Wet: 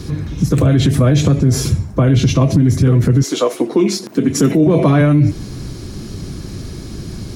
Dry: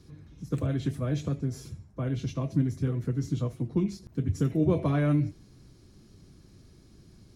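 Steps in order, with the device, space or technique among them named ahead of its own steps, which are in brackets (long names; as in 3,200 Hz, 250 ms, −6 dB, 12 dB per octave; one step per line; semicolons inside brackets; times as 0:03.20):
0:03.22–0:05.00: high-pass filter 450 Hz → 120 Hz 24 dB per octave
loud club master (downward compressor 2 to 1, threshold −30 dBFS, peak gain reduction 6 dB; hard clipping −21 dBFS, distortion −40 dB; boost into a limiter +30 dB)
level −3.5 dB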